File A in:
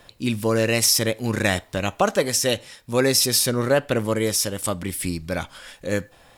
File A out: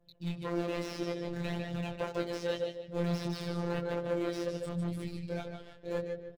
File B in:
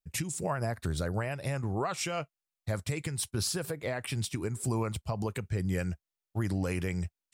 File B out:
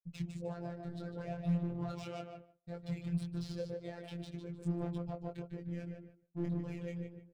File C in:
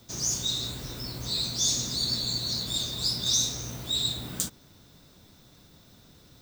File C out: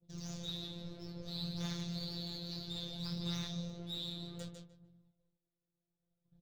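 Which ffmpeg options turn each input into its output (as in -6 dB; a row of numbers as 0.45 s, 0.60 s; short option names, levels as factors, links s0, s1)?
-filter_complex "[0:a]aphaser=in_gain=1:out_gain=1:delay=3.9:decay=0.61:speed=0.62:type=triangular,acrossover=split=560[s0][s1];[s1]adynamicsmooth=sensitivity=7:basefreq=1600[s2];[s0][s2]amix=inputs=2:normalize=0,equalizer=f=125:t=o:w=1:g=10,equalizer=f=250:t=o:w=1:g=-5,equalizer=f=500:t=o:w=1:g=6,equalizer=f=1000:t=o:w=1:g=-7,equalizer=f=2000:t=o:w=1:g=-5,equalizer=f=4000:t=o:w=1:g=5,equalizer=f=8000:t=o:w=1:g=3,asplit=2[s3][s4];[s4]adelay=150,lowpass=f=2500:p=1,volume=0.531,asplit=2[s5][s6];[s6]adelay=150,lowpass=f=2500:p=1,volume=0.4,asplit=2[s7][s8];[s8]adelay=150,lowpass=f=2500:p=1,volume=0.4,asplit=2[s9][s10];[s10]adelay=150,lowpass=f=2500:p=1,volume=0.4,asplit=2[s11][s12];[s12]adelay=150,lowpass=f=2500:p=1,volume=0.4[s13];[s3][s5][s7][s9][s11][s13]amix=inputs=6:normalize=0,asoftclip=type=hard:threshold=0.15,agate=range=0.0224:threshold=0.0141:ratio=3:detection=peak,flanger=delay=18:depth=5.8:speed=1.8,equalizer=f=8400:t=o:w=1.8:g=-6.5,afftfilt=real='hypot(re,im)*cos(PI*b)':imag='0':win_size=1024:overlap=0.75,acrossover=split=3700[s14][s15];[s15]acompressor=threshold=0.00631:ratio=4:attack=1:release=60[s16];[s14][s16]amix=inputs=2:normalize=0,volume=0.501"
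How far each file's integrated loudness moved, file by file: -14.5 LU, -7.5 LU, -14.5 LU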